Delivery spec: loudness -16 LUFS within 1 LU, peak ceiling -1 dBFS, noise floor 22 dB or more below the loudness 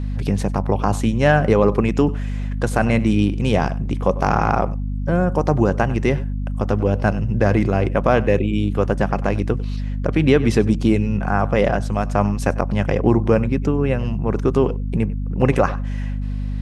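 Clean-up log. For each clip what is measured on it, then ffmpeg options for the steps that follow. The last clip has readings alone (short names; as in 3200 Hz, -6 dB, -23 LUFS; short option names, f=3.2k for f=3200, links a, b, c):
hum 50 Hz; harmonics up to 250 Hz; hum level -21 dBFS; loudness -19.5 LUFS; peak -1.5 dBFS; loudness target -16.0 LUFS
-> -af "bandreject=f=50:t=h:w=4,bandreject=f=100:t=h:w=4,bandreject=f=150:t=h:w=4,bandreject=f=200:t=h:w=4,bandreject=f=250:t=h:w=4"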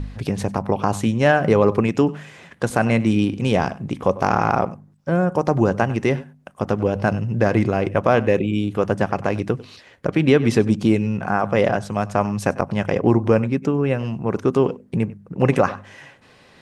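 hum none; loudness -20.5 LUFS; peak -2.0 dBFS; loudness target -16.0 LUFS
-> -af "volume=4.5dB,alimiter=limit=-1dB:level=0:latency=1"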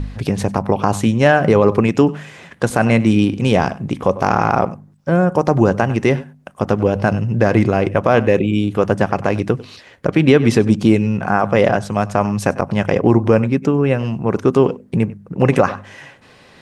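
loudness -16.5 LUFS; peak -1.0 dBFS; noise floor -47 dBFS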